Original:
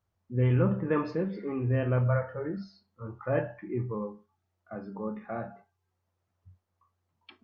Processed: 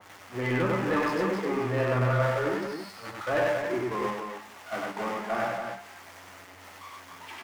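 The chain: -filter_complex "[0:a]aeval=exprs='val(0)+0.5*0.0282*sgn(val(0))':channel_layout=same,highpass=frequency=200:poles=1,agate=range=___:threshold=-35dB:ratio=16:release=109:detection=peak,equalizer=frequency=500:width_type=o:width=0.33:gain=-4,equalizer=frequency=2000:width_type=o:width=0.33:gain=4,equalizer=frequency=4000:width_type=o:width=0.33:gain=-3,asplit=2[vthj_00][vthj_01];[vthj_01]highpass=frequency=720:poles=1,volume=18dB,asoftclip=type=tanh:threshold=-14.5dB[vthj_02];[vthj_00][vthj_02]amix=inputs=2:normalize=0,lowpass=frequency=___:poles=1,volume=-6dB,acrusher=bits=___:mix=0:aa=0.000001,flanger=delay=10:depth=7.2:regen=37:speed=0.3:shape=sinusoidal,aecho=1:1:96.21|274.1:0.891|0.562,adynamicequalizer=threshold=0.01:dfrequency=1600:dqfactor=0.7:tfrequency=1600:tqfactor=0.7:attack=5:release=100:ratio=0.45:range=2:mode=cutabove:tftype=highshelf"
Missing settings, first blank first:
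-14dB, 3800, 9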